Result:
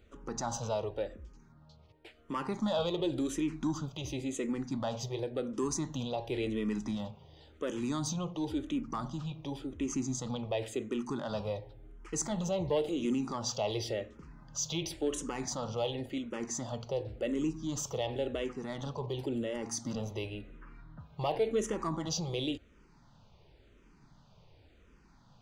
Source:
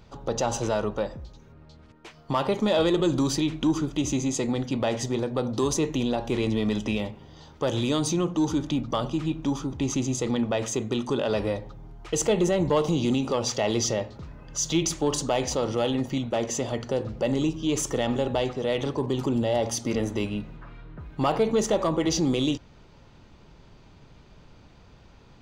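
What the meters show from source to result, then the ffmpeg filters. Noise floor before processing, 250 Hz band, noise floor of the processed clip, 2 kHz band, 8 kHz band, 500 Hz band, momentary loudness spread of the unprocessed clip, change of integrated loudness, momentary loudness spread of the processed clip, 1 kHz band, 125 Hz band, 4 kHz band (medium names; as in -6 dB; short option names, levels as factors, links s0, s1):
-52 dBFS, -9.0 dB, -62 dBFS, -10.0 dB, -8.0 dB, -9.0 dB, 8 LU, -9.0 dB, 8 LU, -9.0 dB, -9.0 dB, -8.5 dB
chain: -filter_complex "[0:a]asplit=2[s0][s1];[s1]afreqshift=-0.93[s2];[s0][s2]amix=inputs=2:normalize=1,volume=0.501"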